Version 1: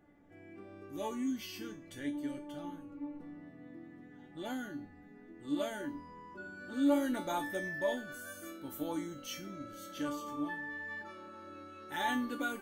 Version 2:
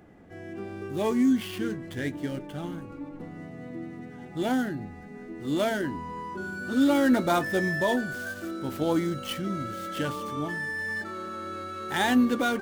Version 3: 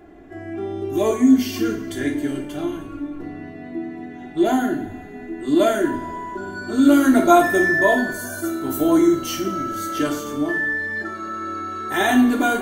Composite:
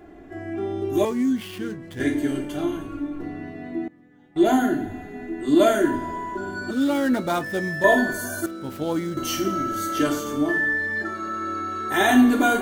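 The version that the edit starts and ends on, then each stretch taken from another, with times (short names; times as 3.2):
3
1.05–2 from 2
3.88–4.36 from 1
6.71–7.84 from 2
8.46–9.17 from 2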